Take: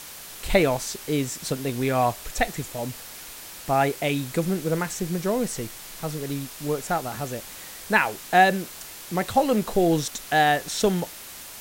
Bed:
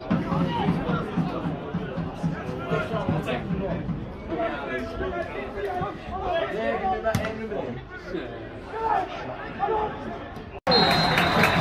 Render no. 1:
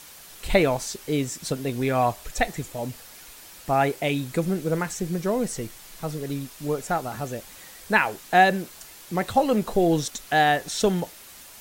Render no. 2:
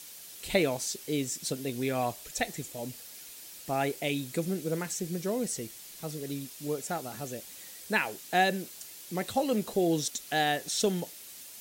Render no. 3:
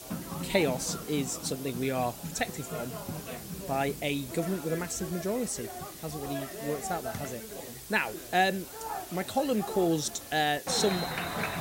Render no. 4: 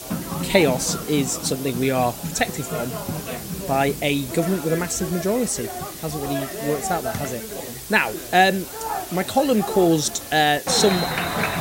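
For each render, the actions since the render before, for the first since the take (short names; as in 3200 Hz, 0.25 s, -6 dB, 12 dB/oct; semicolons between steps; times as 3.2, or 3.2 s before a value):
denoiser 6 dB, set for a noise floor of -41 dBFS
HPF 320 Hz 6 dB/oct; bell 1100 Hz -11 dB 2.1 oct
add bed -13 dB
gain +9.5 dB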